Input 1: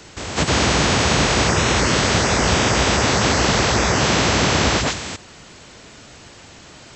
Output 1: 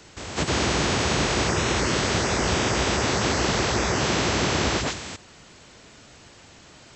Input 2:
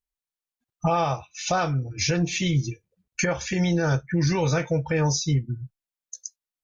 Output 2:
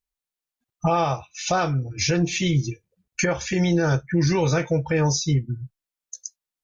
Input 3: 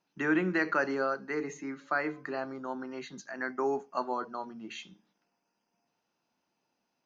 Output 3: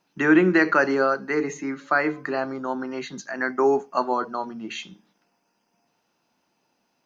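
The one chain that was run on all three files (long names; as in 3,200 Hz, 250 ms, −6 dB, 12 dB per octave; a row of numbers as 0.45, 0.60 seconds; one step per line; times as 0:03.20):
dynamic equaliser 360 Hz, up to +4 dB, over −36 dBFS, Q 3.6
loudness normalisation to −23 LKFS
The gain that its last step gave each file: −6.5, +1.5, +9.0 decibels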